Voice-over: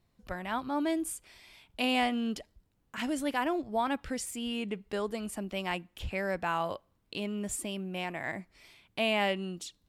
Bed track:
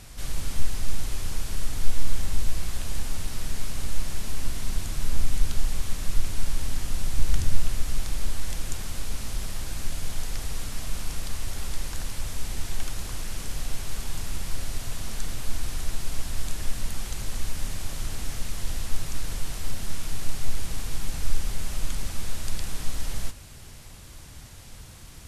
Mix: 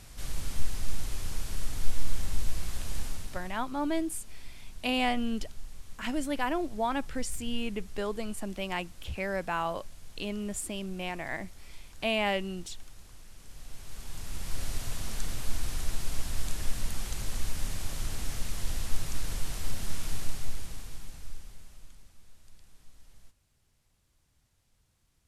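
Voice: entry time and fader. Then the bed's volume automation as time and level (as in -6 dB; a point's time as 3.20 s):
3.05 s, 0.0 dB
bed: 3.05 s -4.5 dB
3.67 s -18.5 dB
13.37 s -18.5 dB
14.64 s -2.5 dB
20.15 s -2.5 dB
22.14 s -26.5 dB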